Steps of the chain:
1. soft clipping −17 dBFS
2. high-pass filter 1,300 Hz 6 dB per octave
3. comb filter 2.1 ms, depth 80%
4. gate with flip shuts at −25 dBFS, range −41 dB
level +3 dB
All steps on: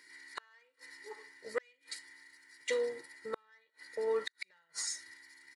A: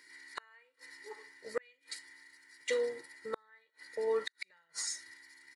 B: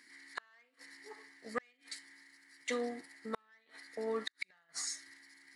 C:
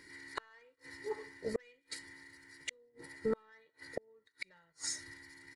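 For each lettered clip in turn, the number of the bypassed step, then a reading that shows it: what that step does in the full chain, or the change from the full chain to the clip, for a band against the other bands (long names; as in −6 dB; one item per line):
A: 1, distortion level −15 dB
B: 3, 250 Hz band +12.0 dB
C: 2, 250 Hz band +12.0 dB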